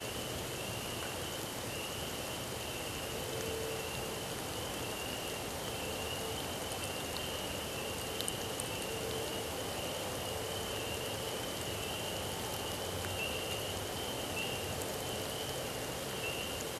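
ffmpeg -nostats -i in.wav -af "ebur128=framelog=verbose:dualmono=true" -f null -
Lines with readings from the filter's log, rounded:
Integrated loudness:
  I:         -34.8 LUFS
  Threshold: -44.8 LUFS
Loudness range:
  LRA:         1.3 LU
  Threshold: -54.8 LUFS
  LRA low:   -35.5 LUFS
  LRA high:  -34.2 LUFS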